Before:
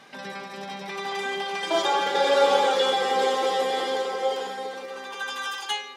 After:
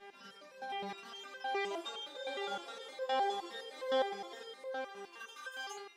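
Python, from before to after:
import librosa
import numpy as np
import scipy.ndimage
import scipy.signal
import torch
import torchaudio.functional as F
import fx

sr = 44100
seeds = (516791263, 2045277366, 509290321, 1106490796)

y = fx.dmg_buzz(x, sr, base_hz=400.0, harmonics=8, level_db=-50.0, tilt_db=-4, odd_only=False)
y = fx.rider(y, sr, range_db=3, speed_s=0.5)
y = fx.resonator_held(y, sr, hz=9.7, low_hz=200.0, high_hz=520.0)
y = F.gain(torch.from_numpy(y), -2.5).numpy()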